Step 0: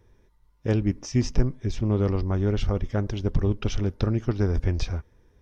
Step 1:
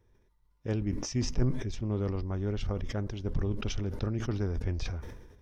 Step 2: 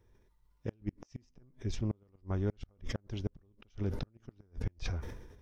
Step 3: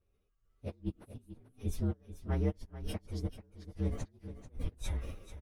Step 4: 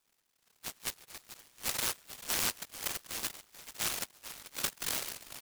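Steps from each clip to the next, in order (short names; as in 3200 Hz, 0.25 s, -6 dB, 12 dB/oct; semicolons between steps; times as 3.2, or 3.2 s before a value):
sustainer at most 53 dB/s; gain -8.5 dB
flipped gate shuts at -22 dBFS, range -36 dB
inharmonic rescaling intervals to 119%; echo 0.438 s -13 dB; AGC gain up to 10 dB; gain -7.5 dB
on a send at -23 dB: reverb RT60 0.30 s, pre-delay 5 ms; on the sum: inverted band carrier 3800 Hz; noise-modulated delay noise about 1400 Hz, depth 0.25 ms; gain -2 dB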